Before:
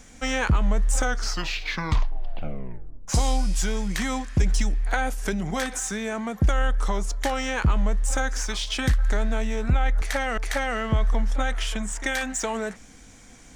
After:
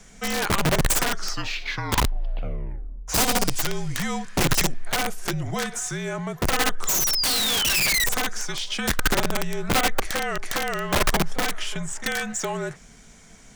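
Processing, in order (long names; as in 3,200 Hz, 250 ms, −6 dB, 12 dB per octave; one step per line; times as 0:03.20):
sound drawn into the spectrogram fall, 0:06.87–0:08.06, 1,900–7,200 Hz −24 dBFS
frequency shifter −46 Hz
wrap-around overflow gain 16.5 dB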